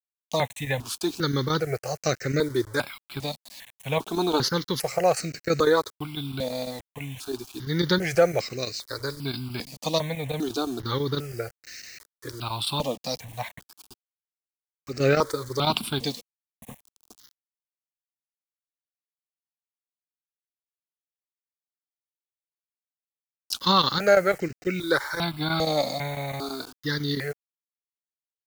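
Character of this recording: chopped level 6 Hz, depth 60%, duty 90%; a quantiser's noise floor 8-bit, dither none; notches that jump at a steady rate 2.5 Hz 390–3400 Hz

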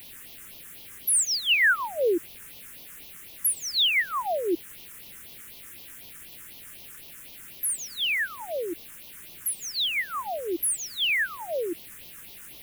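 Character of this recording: a quantiser's noise floor 8-bit, dither triangular; phasing stages 4, 4 Hz, lowest notch 680–1500 Hz

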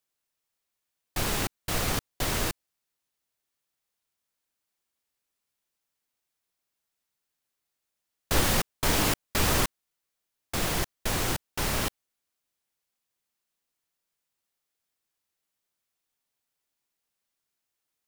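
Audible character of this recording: noise floor -84 dBFS; spectral tilt -3.0 dB/octave

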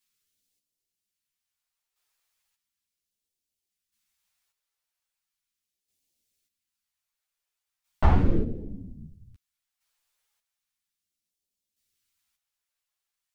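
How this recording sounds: phasing stages 2, 0.37 Hz, lowest notch 210–1200 Hz; chopped level 0.51 Hz, depth 60%, duty 30%; a shimmering, thickened sound

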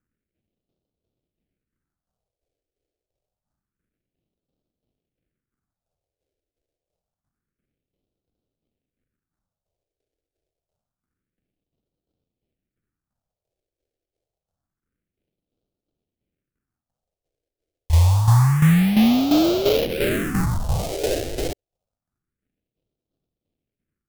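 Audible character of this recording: tremolo saw down 2.9 Hz, depth 65%; aliases and images of a low sample rate 1 kHz, jitter 20%; phasing stages 4, 0.27 Hz, lowest notch 190–1800 Hz

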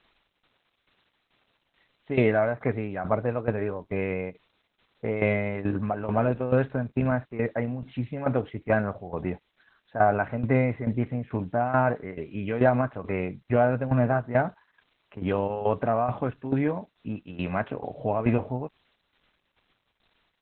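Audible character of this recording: a quantiser's noise floor 10-bit, dither triangular; tremolo saw down 2.3 Hz, depth 75%; Opus

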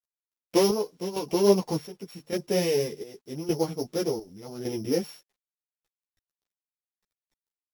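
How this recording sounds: a buzz of ramps at a fixed pitch in blocks of 8 samples; chopped level 0.86 Hz, depth 65%, duty 60%; a quantiser's noise floor 12-bit, dither none; a shimmering, thickened sound

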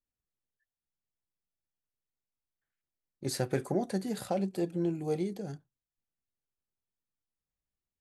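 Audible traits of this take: noise floor -94 dBFS; spectral tilt -6.0 dB/octave

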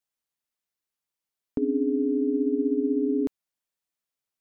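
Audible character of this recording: noise floor -89 dBFS; spectral tilt +10.5 dB/octave

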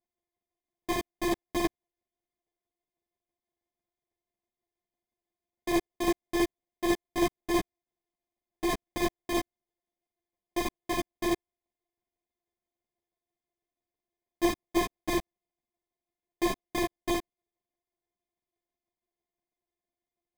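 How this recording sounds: a buzz of ramps at a fixed pitch in blocks of 128 samples; tremolo saw down 6.1 Hz, depth 45%; aliases and images of a low sample rate 1.4 kHz, jitter 0%; a shimmering, thickened sound

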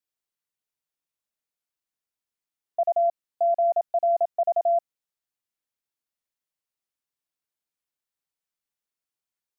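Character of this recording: noise floor -91 dBFS; spectral tilt -6.5 dB/octave

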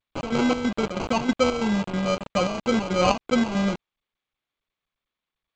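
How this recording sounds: aliases and images of a low sample rate 1.8 kHz, jitter 0%; chopped level 3.1 Hz, depth 65%, duty 65%; a quantiser's noise floor 6-bit, dither none; G.722

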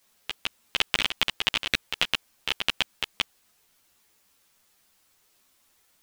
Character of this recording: tremolo saw up 7.4 Hz, depth 80%; a quantiser's noise floor 12-bit, dither triangular; a shimmering, thickened sound

